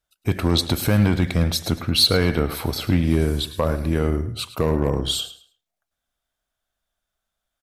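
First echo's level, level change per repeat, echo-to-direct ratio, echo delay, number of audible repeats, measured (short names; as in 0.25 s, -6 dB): -15.0 dB, -12.5 dB, -14.5 dB, 0.107 s, 2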